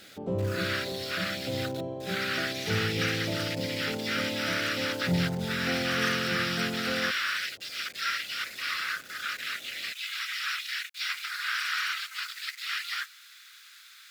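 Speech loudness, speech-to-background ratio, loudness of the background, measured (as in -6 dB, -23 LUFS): -31.0 LUFS, 3.0 dB, -34.0 LUFS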